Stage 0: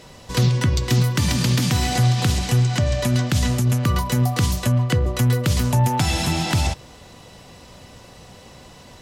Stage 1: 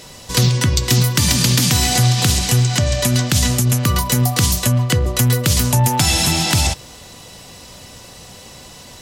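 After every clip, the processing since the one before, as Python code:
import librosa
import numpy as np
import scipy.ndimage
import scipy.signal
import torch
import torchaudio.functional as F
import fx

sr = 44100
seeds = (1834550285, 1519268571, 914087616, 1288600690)

y = fx.high_shelf(x, sr, hz=3700.0, db=11.0)
y = F.gain(torch.from_numpy(y), 2.5).numpy()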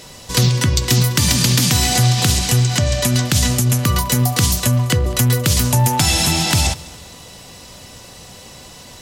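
y = fx.echo_feedback(x, sr, ms=205, feedback_pct=45, wet_db=-22)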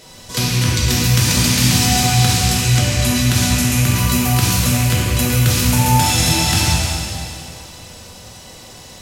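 y = fx.rattle_buzz(x, sr, strikes_db=-17.0, level_db=-15.0)
y = fx.rev_plate(y, sr, seeds[0], rt60_s=2.6, hf_ratio=0.95, predelay_ms=0, drr_db=-5.0)
y = F.gain(torch.from_numpy(y), -5.5).numpy()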